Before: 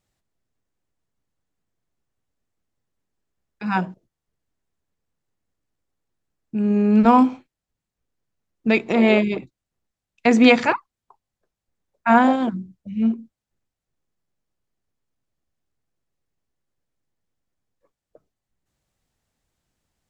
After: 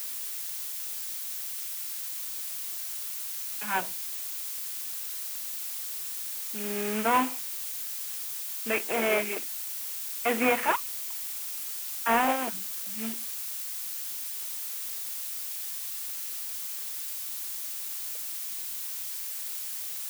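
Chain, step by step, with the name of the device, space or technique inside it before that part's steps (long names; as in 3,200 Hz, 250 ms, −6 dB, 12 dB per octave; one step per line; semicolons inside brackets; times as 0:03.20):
army field radio (band-pass filter 320–2,900 Hz; variable-slope delta modulation 16 kbit/s; white noise bed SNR 15 dB)
spectral tilt +3.5 dB per octave
level −2.5 dB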